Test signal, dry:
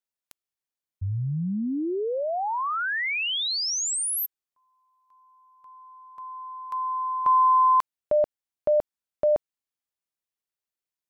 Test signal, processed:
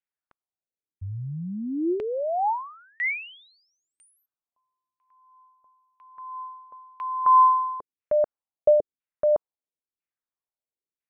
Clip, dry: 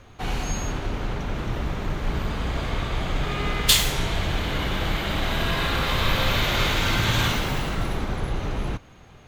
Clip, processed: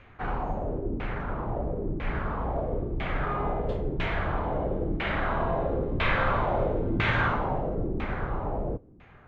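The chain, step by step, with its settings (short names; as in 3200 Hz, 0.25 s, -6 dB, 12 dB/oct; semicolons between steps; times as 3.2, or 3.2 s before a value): LFO low-pass saw down 1 Hz 290–2500 Hz; dynamic EQ 580 Hz, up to +4 dB, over -34 dBFS, Q 0.99; gain -5 dB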